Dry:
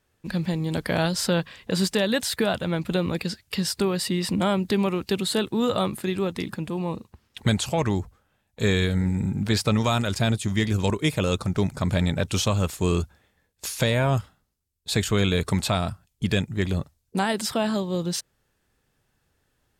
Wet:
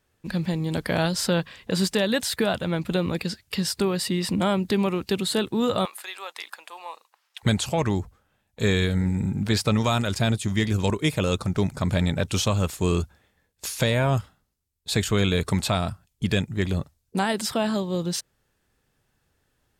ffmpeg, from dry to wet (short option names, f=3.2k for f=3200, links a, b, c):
-filter_complex "[0:a]asettb=1/sr,asplit=3[a][b][c];[a]atrim=end=5.854[d];[b]atrim=start=5.85:end=7.43,asetpts=PTS-STARTPTS,afade=t=in:d=0.004:c=qsin,afade=t=out:st=1.576:d=0.004:c=qsin,highpass=f=730:w=0.5412,highpass=f=730:w=1.3066[e];[c]atrim=start=7.426[f];[d][e]acrossfade=d=0.004:c1=hsin:c2=qsin[g];[g][f]acrossfade=d=0.004:c1=qsin:c2=hsin"